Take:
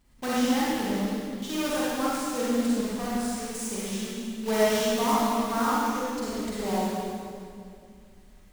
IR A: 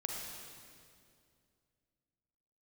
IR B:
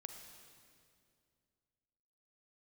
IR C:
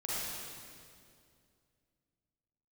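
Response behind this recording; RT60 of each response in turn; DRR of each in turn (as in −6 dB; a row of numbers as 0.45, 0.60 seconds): C; 2.3, 2.3, 2.3 seconds; −0.5, 5.0, −8.5 decibels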